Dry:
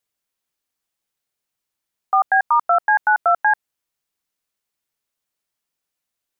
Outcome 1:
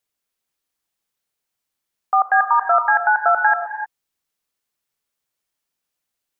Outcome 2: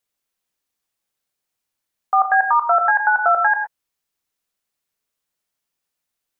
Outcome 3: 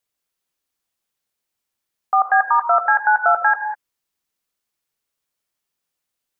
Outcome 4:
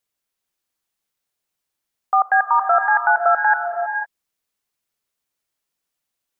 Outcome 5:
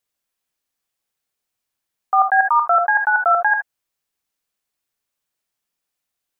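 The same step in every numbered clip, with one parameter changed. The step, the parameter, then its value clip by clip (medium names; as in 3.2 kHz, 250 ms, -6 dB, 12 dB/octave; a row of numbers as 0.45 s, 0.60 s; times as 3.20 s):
gated-style reverb, gate: 330 ms, 140 ms, 220 ms, 530 ms, 90 ms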